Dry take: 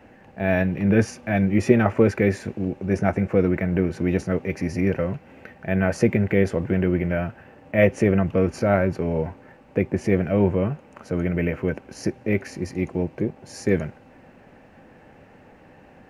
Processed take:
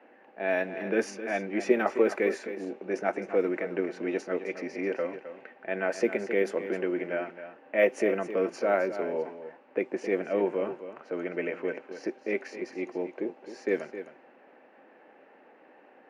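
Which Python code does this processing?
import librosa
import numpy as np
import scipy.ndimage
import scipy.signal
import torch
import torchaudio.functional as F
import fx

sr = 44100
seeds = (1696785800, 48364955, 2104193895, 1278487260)

y = scipy.signal.sosfilt(scipy.signal.butter(4, 300.0, 'highpass', fs=sr, output='sos'), x)
y = fx.env_lowpass(y, sr, base_hz=2700.0, full_db=-17.0)
y = y + 10.0 ** (-11.5 / 20.0) * np.pad(y, (int(263 * sr / 1000.0), 0))[:len(y)]
y = y * librosa.db_to_amplitude(-4.5)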